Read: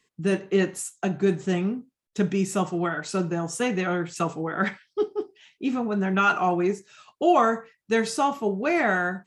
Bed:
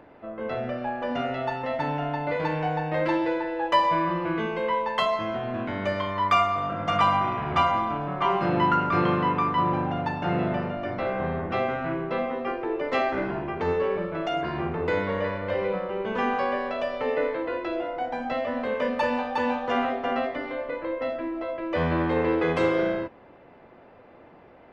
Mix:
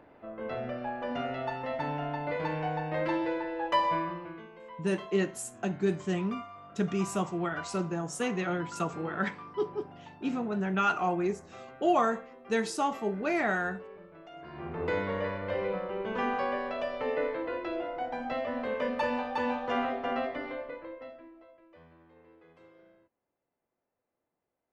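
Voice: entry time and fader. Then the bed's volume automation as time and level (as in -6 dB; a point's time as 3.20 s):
4.60 s, -6.0 dB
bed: 3.95 s -5.5 dB
4.50 s -21.5 dB
14.32 s -21.5 dB
14.83 s -5 dB
20.50 s -5 dB
21.98 s -35 dB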